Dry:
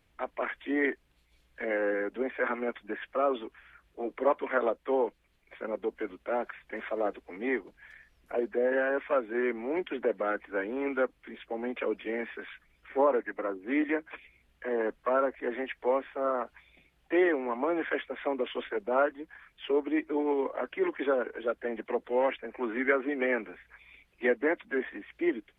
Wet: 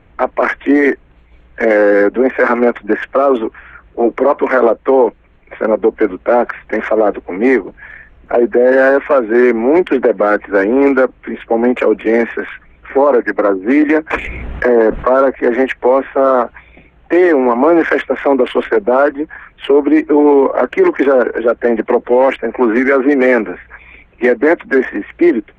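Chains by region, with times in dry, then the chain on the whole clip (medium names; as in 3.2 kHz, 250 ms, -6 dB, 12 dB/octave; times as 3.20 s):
14.10–15.22 s: treble shelf 2.1 kHz -5.5 dB + level flattener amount 50%
whole clip: local Wiener filter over 9 samples; low-pass 2 kHz 6 dB/octave; loudness maximiser +24 dB; trim -1 dB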